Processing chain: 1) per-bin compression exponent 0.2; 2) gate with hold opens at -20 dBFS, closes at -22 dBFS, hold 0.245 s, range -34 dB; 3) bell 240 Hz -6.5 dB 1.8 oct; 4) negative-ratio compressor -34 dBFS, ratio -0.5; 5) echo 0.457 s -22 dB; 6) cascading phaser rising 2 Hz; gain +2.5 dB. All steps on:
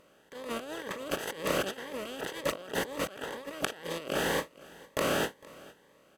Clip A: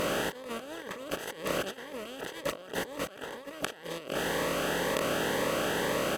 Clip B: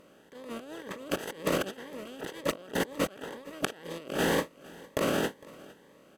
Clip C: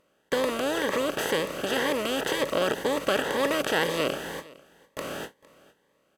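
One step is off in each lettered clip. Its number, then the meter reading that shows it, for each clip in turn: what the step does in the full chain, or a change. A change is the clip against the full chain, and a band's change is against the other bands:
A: 2, momentary loudness spread change -4 LU; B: 3, 250 Hz band +4.5 dB; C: 4, crest factor change -5.5 dB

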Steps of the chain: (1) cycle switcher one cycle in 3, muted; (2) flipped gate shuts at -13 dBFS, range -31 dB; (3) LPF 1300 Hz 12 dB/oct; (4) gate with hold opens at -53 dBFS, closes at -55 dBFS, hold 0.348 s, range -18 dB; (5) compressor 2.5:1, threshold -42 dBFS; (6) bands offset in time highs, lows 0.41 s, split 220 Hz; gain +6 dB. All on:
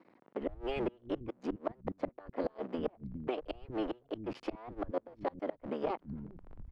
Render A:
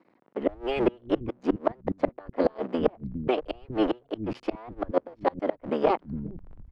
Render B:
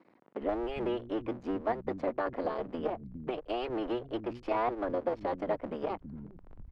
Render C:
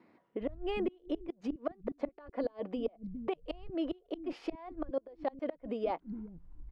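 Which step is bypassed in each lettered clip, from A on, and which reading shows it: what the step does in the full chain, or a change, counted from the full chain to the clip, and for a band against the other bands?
5, mean gain reduction 7.5 dB; 2, momentary loudness spread change +1 LU; 1, 125 Hz band -6.0 dB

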